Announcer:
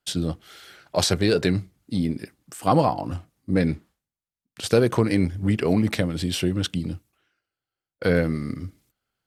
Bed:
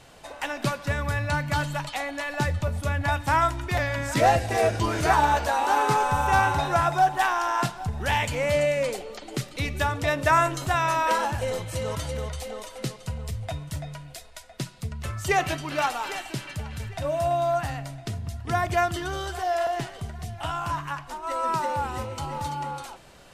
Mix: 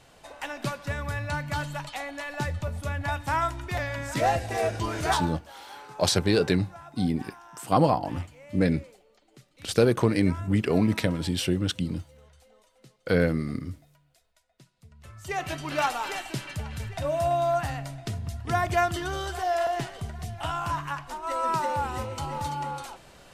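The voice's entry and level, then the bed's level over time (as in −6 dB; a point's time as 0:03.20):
5.05 s, −2.0 dB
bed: 0:05.15 −4.5 dB
0:05.40 −23.5 dB
0:14.73 −23.5 dB
0:15.68 −0.5 dB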